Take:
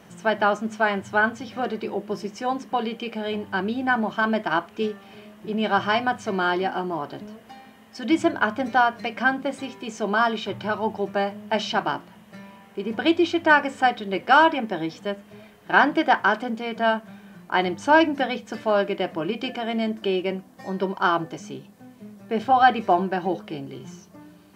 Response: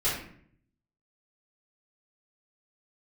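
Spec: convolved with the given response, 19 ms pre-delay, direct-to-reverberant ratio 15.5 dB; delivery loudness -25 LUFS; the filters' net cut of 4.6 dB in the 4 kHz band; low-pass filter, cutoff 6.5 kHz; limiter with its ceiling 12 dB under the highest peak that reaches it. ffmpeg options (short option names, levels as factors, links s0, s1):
-filter_complex "[0:a]lowpass=6500,equalizer=f=4000:t=o:g=-7,alimiter=limit=0.188:level=0:latency=1,asplit=2[s0][s1];[1:a]atrim=start_sample=2205,adelay=19[s2];[s1][s2]afir=irnorm=-1:irlink=0,volume=0.0531[s3];[s0][s3]amix=inputs=2:normalize=0,volume=1.26"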